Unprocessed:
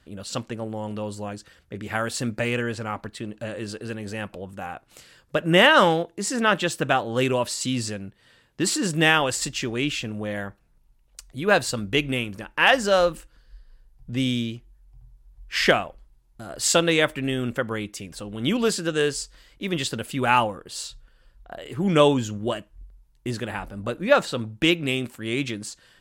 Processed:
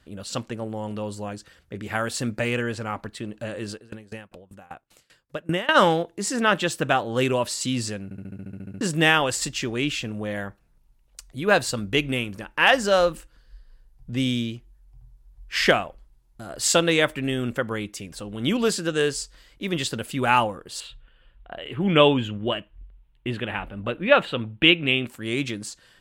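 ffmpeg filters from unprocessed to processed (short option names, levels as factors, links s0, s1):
-filter_complex "[0:a]asplit=3[s0][s1][s2];[s0]afade=t=out:st=3.72:d=0.02[s3];[s1]aeval=exprs='val(0)*pow(10,-25*if(lt(mod(5.1*n/s,1),2*abs(5.1)/1000),1-mod(5.1*n/s,1)/(2*abs(5.1)/1000),(mod(5.1*n/s,1)-2*abs(5.1)/1000)/(1-2*abs(5.1)/1000))/20)':c=same,afade=t=in:st=3.72:d=0.02,afade=t=out:st=5.74:d=0.02[s4];[s2]afade=t=in:st=5.74:d=0.02[s5];[s3][s4][s5]amix=inputs=3:normalize=0,asettb=1/sr,asplit=3[s6][s7][s8];[s6]atrim=end=20.804[s9];[s7]atrim=start=20.8:end=25.07,asetpts=PTS-STARTPTS,afade=t=in:d=0.004:c=qsin,afade=t=out:st=4.266:d=0.004:c=qsin,highshelf=f=4100:t=q:w=3:g=-11[s10];[s8]atrim=start=25.066[s11];[s9][s10]acrossfade=d=0.004:c1=hsin:c2=qsin[s12];[s12][s11]acrossfade=d=0.004:c1=qsin:c2=hsin,asplit=12[s13][s14][s15][s16][s17][s18][s19][s20][s21][s22][s23][s24];[s13]atrim=end=8.112[s25];[s14]atrim=start=8.038:end=8.112[s26];[s15]atrim=start=8.038:end=8.112[s27];[s16]atrim=start=8.038:end=8.112[s28];[s17]atrim=start=8.038:end=8.112[s29];[s18]atrim=start=8.038:end=8.112[s30];[s19]atrim=start=8.038:end=8.112[s31];[s20]atrim=start=8.038:end=8.112[s32];[s21]atrim=start=8.038:end=8.112[s33];[s22]atrim=start=8.038:end=8.112[s34];[s23]atrim=start=8.038:end=8.112[s35];[s24]atrim=start=8.808[s36];[s25][s26]acrossfade=d=0.004:c1=hsin:c2=hsin[s37];[s37][s27]acrossfade=d=0.004:c1=hsin:c2=hsin[s38];[s38][s28]acrossfade=d=0.004:c1=hsin:c2=hsin[s39];[s39][s29]acrossfade=d=0.004:c1=hsin:c2=hsin[s40];[s40][s30]acrossfade=d=0.004:c1=hsin:c2=hsin[s41];[s41][s31]acrossfade=d=0.004:c1=hsin:c2=hsin[s42];[s42][s32]acrossfade=d=0.004:c1=hsin:c2=hsin[s43];[s43][s33]acrossfade=d=0.004:c1=hsin:c2=hsin[s44];[s44][s34]acrossfade=d=0.004:c1=hsin:c2=hsin[s45];[s45][s35]acrossfade=d=0.004:c1=hsin:c2=hsin[s46];[s46][s36]acrossfade=d=0.004:c1=hsin:c2=hsin"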